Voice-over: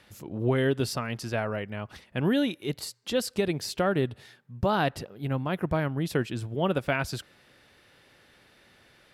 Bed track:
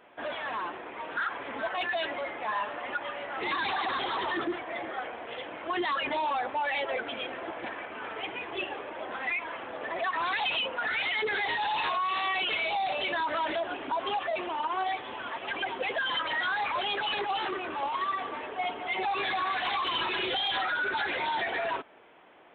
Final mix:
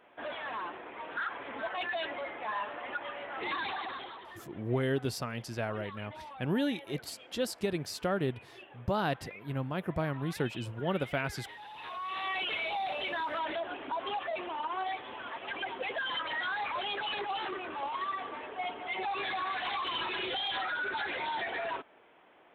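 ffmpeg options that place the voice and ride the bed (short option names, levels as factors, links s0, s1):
-filter_complex "[0:a]adelay=4250,volume=0.531[s0];[1:a]volume=2.99,afade=t=out:st=3.54:d=0.68:silence=0.199526,afade=t=in:st=11.76:d=0.58:silence=0.211349[s1];[s0][s1]amix=inputs=2:normalize=0"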